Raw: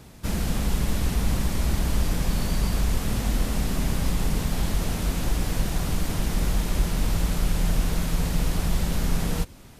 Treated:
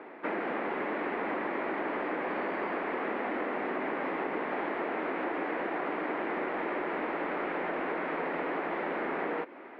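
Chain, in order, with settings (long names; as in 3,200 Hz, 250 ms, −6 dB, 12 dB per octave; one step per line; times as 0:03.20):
elliptic band-pass filter 320–2,100 Hz, stop band 50 dB
downward compressor, threshold −38 dBFS, peak gain reduction 5.5 dB
level +8.5 dB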